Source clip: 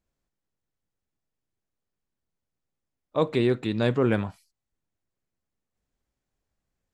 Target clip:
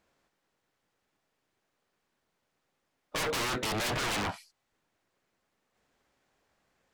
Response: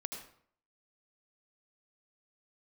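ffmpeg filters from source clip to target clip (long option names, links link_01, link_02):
-filter_complex "[0:a]asplit=2[link_01][link_02];[link_02]highpass=frequency=720:poles=1,volume=23dB,asoftclip=type=tanh:threshold=-9dB[link_03];[link_01][link_03]amix=inputs=2:normalize=0,lowpass=frequency=2400:poles=1,volume=-6dB,aeval=exprs='0.0473*(abs(mod(val(0)/0.0473+3,4)-2)-1)':channel_layout=same"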